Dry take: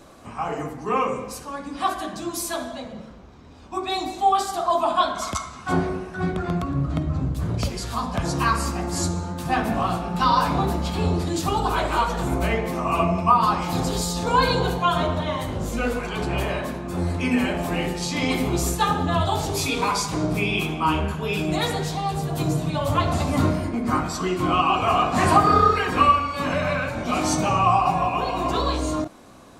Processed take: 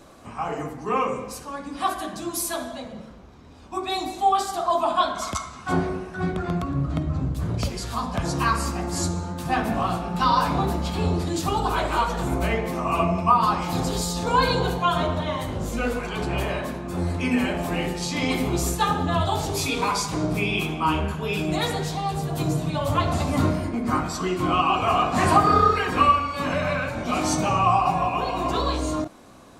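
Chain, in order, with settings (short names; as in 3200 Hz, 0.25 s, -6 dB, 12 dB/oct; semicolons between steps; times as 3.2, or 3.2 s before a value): 1.72–4.29 bell 11000 Hz +5.5 dB 0.52 oct; gain -1 dB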